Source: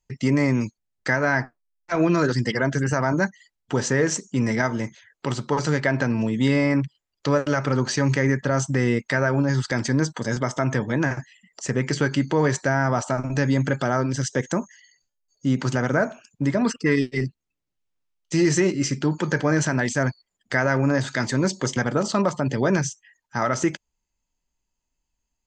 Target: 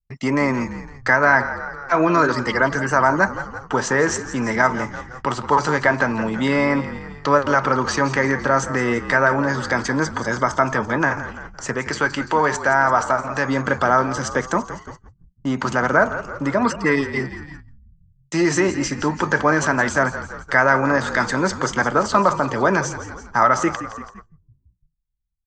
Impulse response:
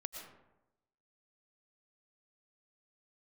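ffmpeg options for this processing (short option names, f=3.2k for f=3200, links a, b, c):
-filter_complex "[0:a]asettb=1/sr,asplit=3[a][b][c];[a]atrim=end=11.734[d];[b]atrim=start=11.73:end=13.48,asetpts=PTS-STARTPTS,afade=t=in:d=0.004:c=qsin,afade=t=out:st=1.746:d=0.004:c=qsin,lowshelf=f=240:g=-11[e];[c]atrim=start=13.476[f];[d][e]acrossfade=d=0.004:c1=hsin:c2=qsin[g];[g][f]acrossfade=d=0.004:c1=qsin:c2=hsin,asplit=8[h][i][j][k][l][m][n][o];[i]adelay=169,afreqshift=-44,volume=-13dB[p];[j]adelay=338,afreqshift=-88,volume=-17.3dB[q];[k]adelay=507,afreqshift=-132,volume=-21.6dB[r];[l]adelay=676,afreqshift=-176,volume=-25.9dB[s];[m]adelay=845,afreqshift=-220,volume=-30.2dB[t];[n]adelay=1014,afreqshift=-264,volume=-34.5dB[u];[o]adelay=1183,afreqshift=-308,volume=-38.8dB[v];[h][p][q][r][s][t][u][v]amix=inputs=8:normalize=0,acrossover=split=170[w][x];[w]asoftclip=type=hard:threshold=-35dB[y];[x]agate=range=-55dB:threshold=-43dB:ratio=16:detection=peak[z];[y][z]amix=inputs=2:normalize=0,equalizer=f=1.1k:t=o:w=1.4:g=12,asplit=2[aa][ab];[1:a]atrim=start_sample=2205,atrim=end_sample=4410,asetrate=27783,aresample=44100[ac];[ab][ac]afir=irnorm=-1:irlink=0,volume=-13.5dB[ad];[aa][ad]amix=inputs=2:normalize=0,volume=-1.5dB"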